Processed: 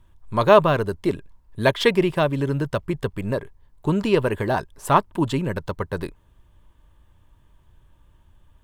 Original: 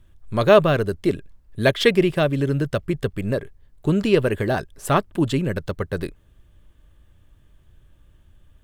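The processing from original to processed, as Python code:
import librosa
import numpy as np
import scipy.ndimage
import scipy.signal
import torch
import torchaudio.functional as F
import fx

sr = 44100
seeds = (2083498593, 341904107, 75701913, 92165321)

y = fx.peak_eq(x, sr, hz=960.0, db=12.5, octaves=0.4)
y = y * librosa.db_to_amplitude(-2.0)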